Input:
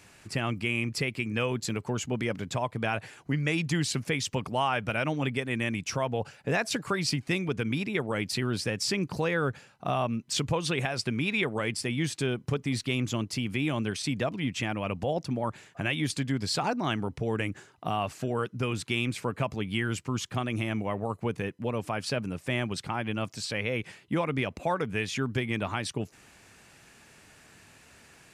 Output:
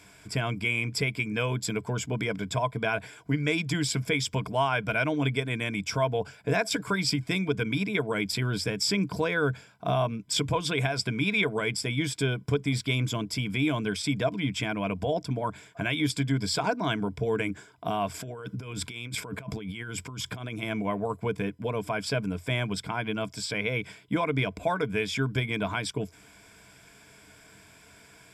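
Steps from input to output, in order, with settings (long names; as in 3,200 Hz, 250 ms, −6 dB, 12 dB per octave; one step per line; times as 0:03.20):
EQ curve with evenly spaced ripples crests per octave 1.7, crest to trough 11 dB
0:18.14–0:20.63: compressor whose output falls as the input rises −37 dBFS, ratio −1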